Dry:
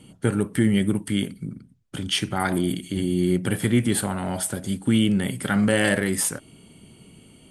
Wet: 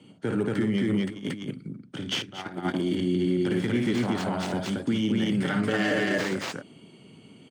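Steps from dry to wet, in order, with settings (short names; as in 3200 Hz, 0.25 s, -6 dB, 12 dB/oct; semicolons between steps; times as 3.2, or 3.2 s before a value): tracing distortion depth 0.15 ms; 5.31–6.05 comb 6.6 ms, depth 75%; loudspeakers at several distances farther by 19 m -8 dB, 79 m -1 dB; 2.22–2.74 gate -18 dBFS, range -14 dB; limiter -13.5 dBFS, peak gain reduction 8.5 dB; HPF 100 Hz 24 dB/oct; low shelf 220 Hz +10.5 dB; 1.09–1.51 negative-ratio compressor -24 dBFS, ratio -0.5; three-band isolator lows -12 dB, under 240 Hz, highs -24 dB, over 6600 Hz; gain -3 dB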